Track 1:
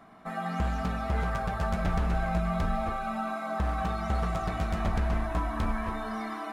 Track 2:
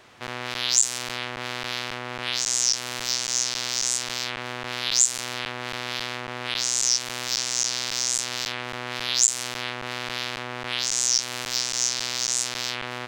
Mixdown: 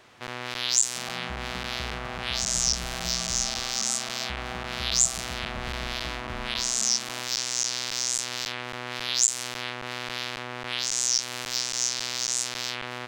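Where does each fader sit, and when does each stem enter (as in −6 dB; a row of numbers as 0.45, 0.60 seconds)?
−9.5, −2.5 decibels; 0.70, 0.00 seconds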